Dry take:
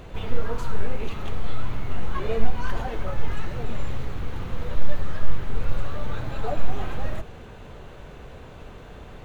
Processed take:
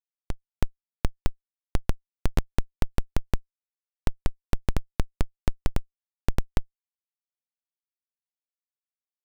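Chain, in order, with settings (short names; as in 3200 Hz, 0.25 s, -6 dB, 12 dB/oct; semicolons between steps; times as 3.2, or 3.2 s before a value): octaver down 1 oct, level -6 dB; delay with a stepping band-pass 0.34 s, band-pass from 850 Hz, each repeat 0.7 oct, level -6 dB; Schmitt trigger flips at -17.5 dBFS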